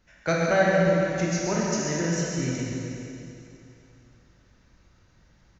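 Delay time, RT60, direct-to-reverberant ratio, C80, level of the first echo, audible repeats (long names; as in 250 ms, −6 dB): 136 ms, 2.8 s, −5.5 dB, −1.5 dB, −6.0 dB, 1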